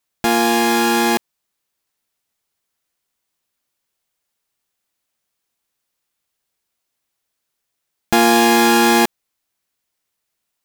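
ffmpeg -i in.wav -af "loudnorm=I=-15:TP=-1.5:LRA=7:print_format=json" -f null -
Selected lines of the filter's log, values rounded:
"input_i" : "-14.3",
"input_tp" : "-1.9",
"input_lra" : "3.2",
"input_thresh" : "-24.3",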